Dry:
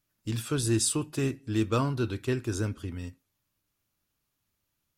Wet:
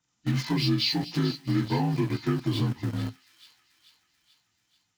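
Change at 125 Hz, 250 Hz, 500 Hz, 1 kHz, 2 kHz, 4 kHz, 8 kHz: +3.5 dB, +3.5 dB, -3.0 dB, +2.5 dB, +2.0 dB, +8.0 dB, -14.0 dB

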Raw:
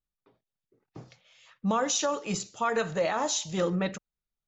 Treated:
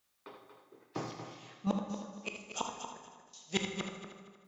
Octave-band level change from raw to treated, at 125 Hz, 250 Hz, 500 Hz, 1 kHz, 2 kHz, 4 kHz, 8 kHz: -7.5 dB, -6.5 dB, -13.5 dB, -11.5 dB, -8.0 dB, -7.5 dB, no reading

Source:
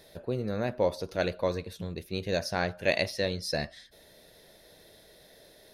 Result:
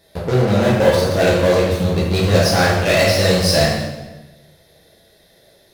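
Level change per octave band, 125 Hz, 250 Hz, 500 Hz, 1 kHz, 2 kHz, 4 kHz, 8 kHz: +19.5 dB, +17.0 dB, +15.0 dB, +15.5 dB, +14.0 dB, +16.0 dB, +19.5 dB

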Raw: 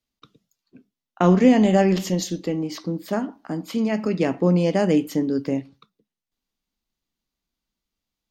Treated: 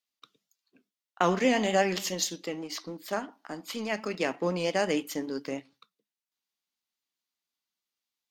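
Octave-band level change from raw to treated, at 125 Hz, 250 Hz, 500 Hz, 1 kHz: -15.5 dB, -13.0 dB, -7.0 dB, -3.5 dB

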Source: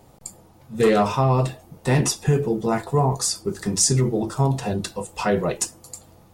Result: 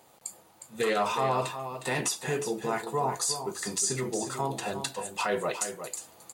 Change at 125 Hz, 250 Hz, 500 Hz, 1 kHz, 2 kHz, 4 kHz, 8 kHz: -17.5 dB, -13.0 dB, -8.0 dB, -4.5 dB, -2.5 dB, -5.5 dB, -6.0 dB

